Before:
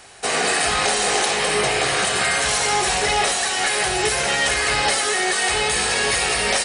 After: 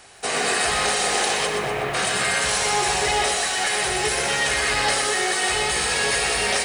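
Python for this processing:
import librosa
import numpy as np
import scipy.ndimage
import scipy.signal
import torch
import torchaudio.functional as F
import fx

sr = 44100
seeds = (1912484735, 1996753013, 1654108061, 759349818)

y = fx.air_absorb(x, sr, metres=500.0, at=(1.46, 1.93), fade=0.02)
y = fx.echo_crushed(y, sr, ms=123, feedback_pct=55, bits=7, wet_db=-6)
y = y * librosa.db_to_amplitude(-3.0)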